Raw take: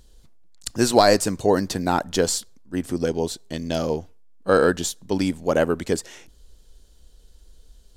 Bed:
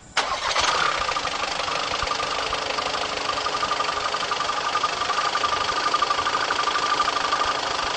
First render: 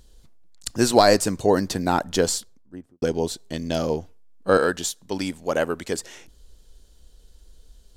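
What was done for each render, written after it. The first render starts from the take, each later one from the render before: 2.26–3.02 studio fade out; 4.57–5.99 low shelf 480 Hz -7.5 dB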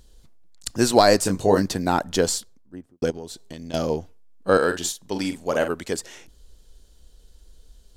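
1.23–1.66 doubler 21 ms -5 dB; 3.1–3.74 compressor 4:1, threshold -33 dBFS; 4.66–5.72 doubler 46 ms -8.5 dB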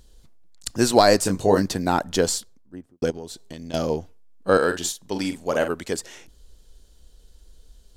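nothing audible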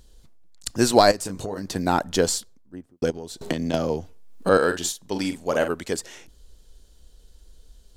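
1.11–1.76 compressor 12:1, threshold -26 dBFS; 3.41–4.49 three-band squash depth 100%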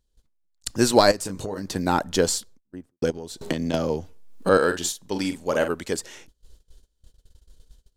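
notch 700 Hz, Q 13; gate -46 dBFS, range -21 dB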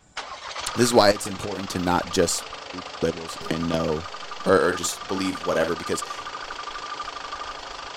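add bed -11 dB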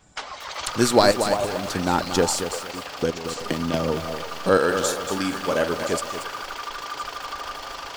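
delay with a stepping band-pass 0.339 s, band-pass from 770 Hz, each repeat 1.4 oct, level -6.5 dB; lo-fi delay 0.231 s, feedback 35%, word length 6-bit, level -8 dB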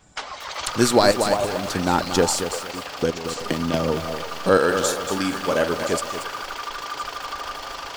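gain +1.5 dB; limiter -3 dBFS, peak gain reduction 2.5 dB

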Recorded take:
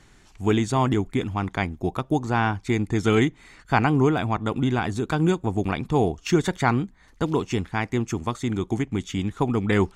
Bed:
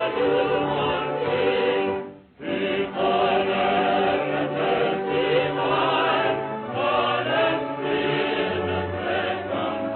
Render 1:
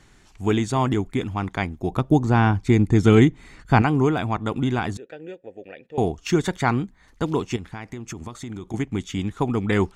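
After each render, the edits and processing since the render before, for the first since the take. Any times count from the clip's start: 1.9–3.82 low shelf 410 Hz +8.5 dB; 4.97–5.98 vowel filter e; 7.56–8.74 compressor 12:1, threshold -29 dBFS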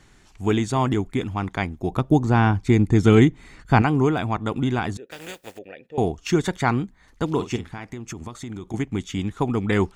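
5.1–5.57 spectral contrast lowered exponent 0.39; 7.31–7.85 doubler 49 ms -11 dB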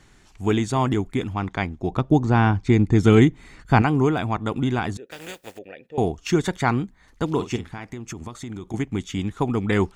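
1.33–2.98 LPF 6900 Hz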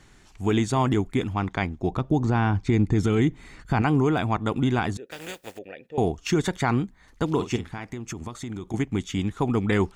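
limiter -12 dBFS, peak gain reduction 10 dB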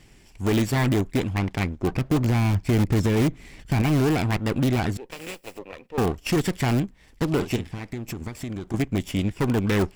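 minimum comb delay 0.39 ms; in parallel at -11 dB: wrapped overs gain 16.5 dB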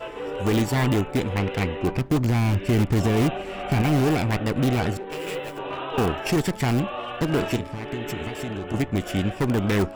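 add bed -10.5 dB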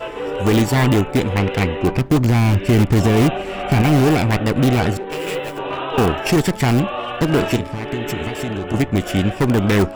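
gain +6.5 dB

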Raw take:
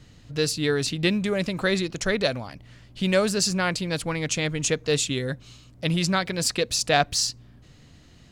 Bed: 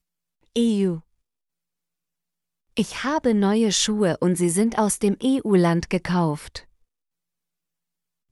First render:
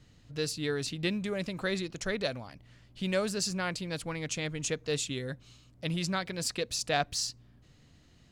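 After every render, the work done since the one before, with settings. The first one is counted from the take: gain -8.5 dB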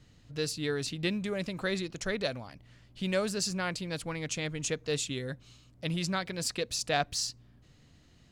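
nothing audible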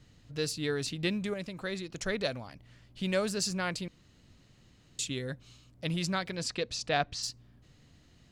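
1.34–1.92 gain -4.5 dB; 3.88–4.99 room tone; 6.35–7.22 LPF 6900 Hz -> 4100 Hz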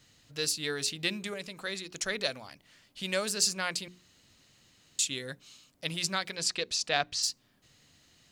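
tilt +2.5 dB/oct; notches 60/120/180/240/300/360/420 Hz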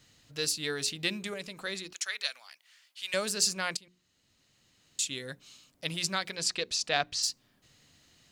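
1.93–3.14 HPF 1400 Hz; 3.77–5.47 fade in, from -17.5 dB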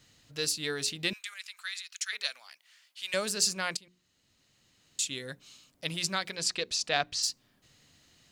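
1.13–2.13 HPF 1400 Hz 24 dB/oct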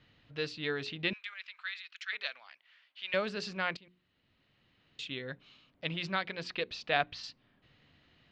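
LPF 3300 Hz 24 dB/oct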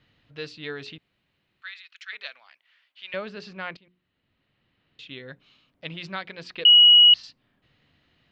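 0.98–1.62 room tone; 3.13–5.09 air absorption 120 m; 6.65–7.14 bleep 2910 Hz -9.5 dBFS

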